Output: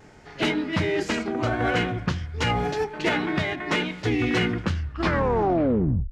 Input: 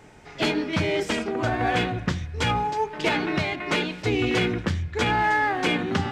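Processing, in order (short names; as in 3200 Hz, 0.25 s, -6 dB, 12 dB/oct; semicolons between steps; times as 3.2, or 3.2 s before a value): tape stop at the end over 1.42 s; vibrato 0.35 Hz 10 cents; formant shift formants -2 st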